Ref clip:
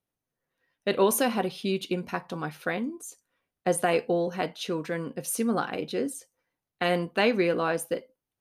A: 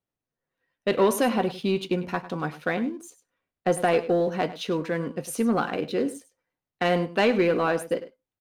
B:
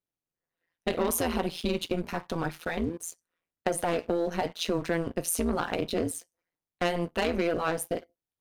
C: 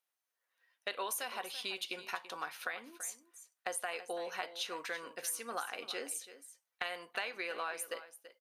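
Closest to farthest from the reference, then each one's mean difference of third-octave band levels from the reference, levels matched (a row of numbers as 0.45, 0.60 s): A, B, C; 3.0, 5.0, 10.5 dB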